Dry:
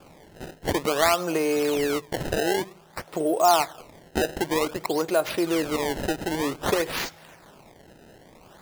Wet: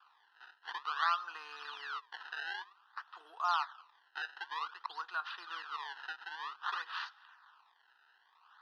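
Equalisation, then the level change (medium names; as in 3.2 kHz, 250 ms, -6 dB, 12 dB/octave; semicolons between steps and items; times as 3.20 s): high-pass 1.1 kHz 24 dB/octave; tape spacing loss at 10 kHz 36 dB; static phaser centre 2.2 kHz, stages 6; +2.0 dB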